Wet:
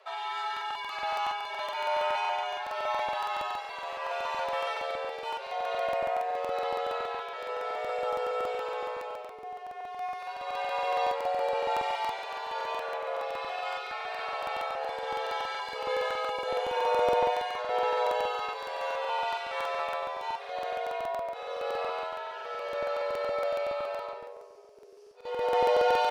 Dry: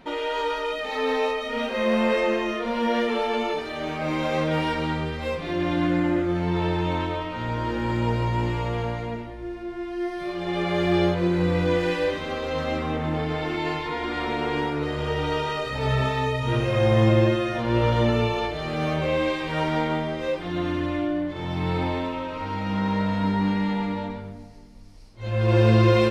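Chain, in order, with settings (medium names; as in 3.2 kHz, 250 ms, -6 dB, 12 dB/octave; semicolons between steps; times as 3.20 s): frequency shift +380 Hz; crackling interface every 0.14 s, samples 2048, repeat, from 0.52 s; trim -7.5 dB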